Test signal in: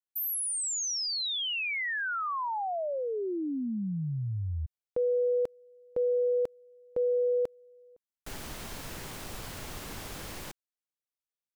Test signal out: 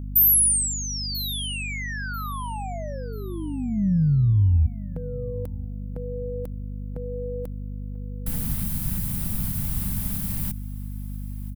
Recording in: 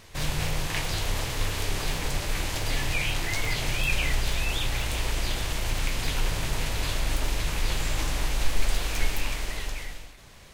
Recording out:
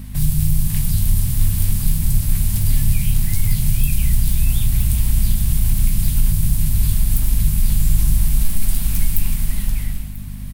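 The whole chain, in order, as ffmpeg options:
ffmpeg -i in.wav -filter_complex "[0:a]lowshelf=frequency=280:width_type=q:width=3:gain=13,acrossover=split=130|4400[link_01][link_02][link_03];[link_01]alimiter=limit=-8dB:level=0:latency=1:release=147[link_04];[link_02]acompressor=threshold=-32dB:ratio=5:attack=2.8:release=525:detection=rms[link_05];[link_04][link_05][link_03]amix=inputs=3:normalize=0,aeval=exprs='val(0)+0.0251*(sin(2*PI*50*n/s)+sin(2*PI*2*50*n/s)/2+sin(2*PI*3*50*n/s)/3+sin(2*PI*4*50*n/s)/4+sin(2*PI*5*50*n/s)/5)':channel_layout=same,aexciter=amount=4.4:drive=7.3:freq=8900,asplit=2[link_06][link_07];[link_07]aecho=0:1:990|1980|2970:0.106|0.0339|0.0108[link_08];[link_06][link_08]amix=inputs=2:normalize=0,volume=1dB" out.wav

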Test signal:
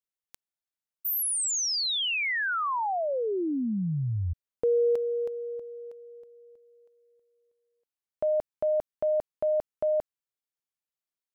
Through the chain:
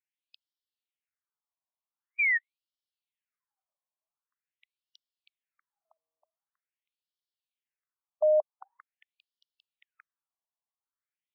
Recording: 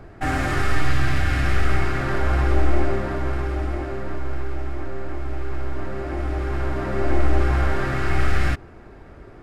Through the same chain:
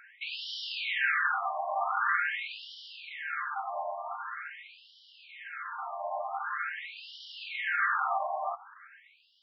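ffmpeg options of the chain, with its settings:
ffmpeg -i in.wav -af "highpass=380,lowpass=6100,afftfilt=real='re*between(b*sr/1024,800*pow(4100/800,0.5+0.5*sin(2*PI*0.45*pts/sr))/1.41,800*pow(4100/800,0.5+0.5*sin(2*PI*0.45*pts/sr))*1.41)':imag='im*between(b*sr/1024,800*pow(4100/800,0.5+0.5*sin(2*PI*0.45*pts/sr))/1.41,800*pow(4100/800,0.5+0.5*sin(2*PI*0.45*pts/sr))*1.41)':win_size=1024:overlap=0.75,volume=4dB" out.wav

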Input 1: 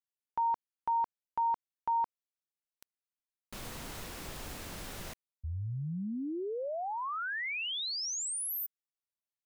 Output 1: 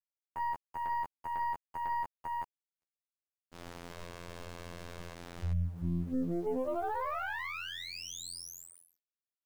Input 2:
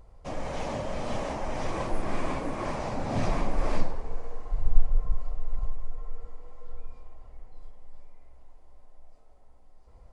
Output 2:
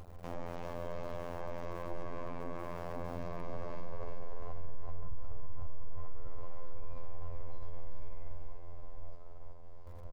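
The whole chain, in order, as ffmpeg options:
ffmpeg -i in.wav -af "lowpass=5000,afftfilt=real='hypot(re,im)*cos(PI*b)':imag='0':win_size=2048:overlap=0.75,acompressor=threshold=-31dB:ratio=16:attack=2.8:release=220:knee=1:detection=rms,aecho=1:1:385:0.447,alimiter=level_in=11.5dB:limit=-24dB:level=0:latency=1:release=60,volume=-11.5dB,aeval=exprs='val(0)*gte(abs(val(0)),0.00141)':channel_layout=same,equalizer=frequency=3700:width=0.42:gain=-6.5,agate=range=-42dB:threshold=-54dB:ratio=3:release=449:detection=peak,aeval=exprs='0.0168*(cos(1*acos(clip(val(0)/0.0168,-1,1)))-cos(1*PI/2))+0.00473*(cos(2*acos(clip(val(0)/0.0168,-1,1)))-cos(2*PI/2))+0.000299*(cos(7*acos(clip(val(0)/0.0168,-1,1)))-cos(7*PI/2))':channel_layout=same,volume=8dB" out.wav

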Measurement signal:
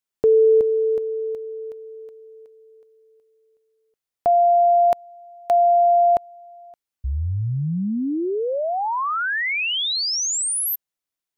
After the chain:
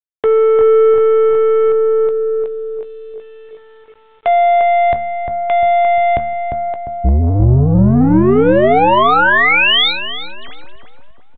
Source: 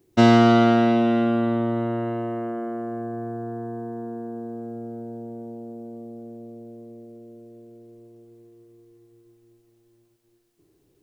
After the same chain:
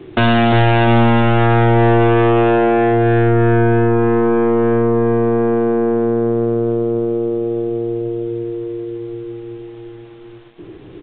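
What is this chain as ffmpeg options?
ffmpeg -i in.wav -filter_complex "[0:a]bandreject=frequency=75.9:width_type=h:width=4,bandreject=frequency=151.8:width_type=h:width=4,bandreject=frequency=227.7:width_type=h:width=4,acrossover=split=110[link_01][link_02];[link_02]acompressor=threshold=-26dB:ratio=6:attack=0.15:release=26:knee=6[link_03];[link_01][link_03]amix=inputs=2:normalize=0,apsyclip=31dB,aeval=exprs='(tanh(2*val(0)+0.1)-tanh(0.1))/2':channel_layout=same,asplit=2[link_04][link_05];[link_05]adelay=16,volume=-13dB[link_06];[link_04][link_06]amix=inputs=2:normalize=0,asplit=2[link_07][link_08];[link_08]adelay=350,lowpass=frequency=1100:poles=1,volume=-3.5dB,asplit=2[link_09][link_10];[link_10]adelay=350,lowpass=frequency=1100:poles=1,volume=0.52,asplit=2[link_11][link_12];[link_12]adelay=350,lowpass=frequency=1100:poles=1,volume=0.52,asplit=2[link_13][link_14];[link_14]adelay=350,lowpass=frequency=1100:poles=1,volume=0.52,asplit=2[link_15][link_16];[link_16]adelay=350,lowpass=frequency=1100:poles=1,volume=0.52,asplit=2[link_17][link_18];[link_18]adelay=350,lowpass=frequency=1100:poles=1,volume=0.52,asplit=2[link_19][link_20];[link_20]adelay=350,lowpass=frequency=1100:poles=1,volume=0.52[link_21];[link_09][link_11][link_13][link_15][link_17][link_19][link_21]amix=inputs=7:normalize=0[link_22];[link_07][link_22]amix=inputs=2:normalize=0,aeval=exprs='val(0)*gte(abs(val(0)),0.0133)':channel_layout=same,aresample=8000,aresample=44100,volume=-4dB" out.wav

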